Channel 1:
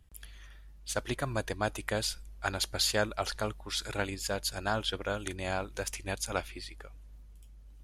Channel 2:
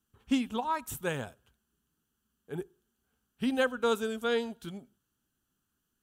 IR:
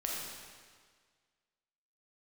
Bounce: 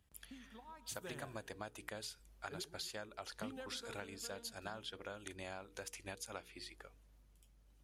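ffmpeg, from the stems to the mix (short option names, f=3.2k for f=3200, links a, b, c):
-filter_complex "[0:a]highpass=f=140:p=1,bandreject=f=60:t=h:w=6,bandreject=f=120:t=h:w=6,bandreject=f=180:t=h:w=6,bandreject=f=240:t=h:w=6,bandreject=f=300:t=h:w=6,bandreject=f=360:t=h:w=6,bandreject=f=420:t=h:w=6,bandreject=f=480:t=h:w=6,acompressor=threshold=-38dB:ratio=6,volume=-5.5dB[a];[1:a]acompressor=threshold=-35dB:ratio=4,volume=-10.5dB,afade=t=in:st=0.65:d=0.62:silence=0.375837,afade=t=out:st=3.4:d=0.55:silence=0.375837,asplit=2[b][c];[c]volume=-14dB,aecho=0:1:138|276|414|552|690|828|966|1104:1|0.55|0.303|0.166|0.0915|0.0503|0.0277|0.0152[d];[a][b][d]amix=inputs=3:normalize=0"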